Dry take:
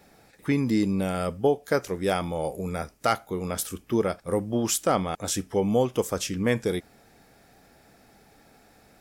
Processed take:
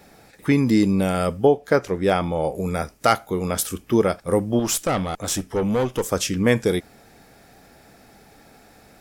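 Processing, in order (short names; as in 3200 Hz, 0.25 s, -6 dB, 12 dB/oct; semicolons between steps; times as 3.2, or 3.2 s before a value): 1.45–2.56 high shelf 5400 Hz -12 dB; 4.59–6.12 tube stage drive 22 dB, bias 0.4; gain +6 dB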